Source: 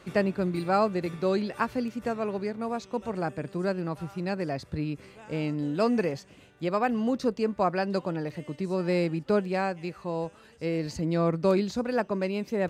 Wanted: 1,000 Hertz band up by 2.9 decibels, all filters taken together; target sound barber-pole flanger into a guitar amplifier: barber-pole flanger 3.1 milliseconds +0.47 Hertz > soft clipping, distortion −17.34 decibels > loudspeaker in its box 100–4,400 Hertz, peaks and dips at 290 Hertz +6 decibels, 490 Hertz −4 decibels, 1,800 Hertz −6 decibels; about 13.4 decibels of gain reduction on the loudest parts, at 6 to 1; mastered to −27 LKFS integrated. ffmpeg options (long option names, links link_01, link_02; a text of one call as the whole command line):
ffmpeg -i in.wav -filter_complex "[0:a]equalizer=frequency=1000:width_type=o:gain=4.5,acompressor=threshold=-33dB:ratio=6,asplit=2[link_01][link_02];[link_02]adelay=3.1,afreqshift=0.47[link_03];[link_01][link_03]amix=inputs=2:normalize=1,asoftclip=threshold=-31dB,highpass=100,equalizer=frequency=290:width_type=q:width=4:gain=6,equalizer=frequency=490:width_type=q:width=4:gain=-4,equalizer=frequency=1800:width_type=q:width=4:gain=-6,lowpass=frequency=4400:width=0.5412,lowpass=frequency=4400:width=1.3066,volume=14.5dB" out.wav